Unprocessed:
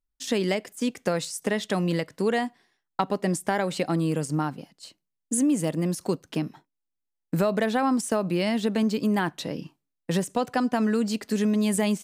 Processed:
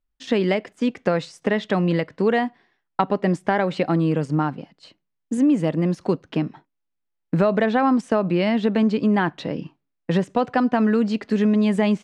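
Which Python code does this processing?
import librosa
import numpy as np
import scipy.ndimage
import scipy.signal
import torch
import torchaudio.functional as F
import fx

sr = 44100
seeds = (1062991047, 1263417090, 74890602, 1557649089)

y = scipy.signal.sosfilt(scipy.signal.butter(2, 2900.0, 'lowpass', fs=sr, output='sos'), x)
y = y * librosa.db_to_amplitude(5.0)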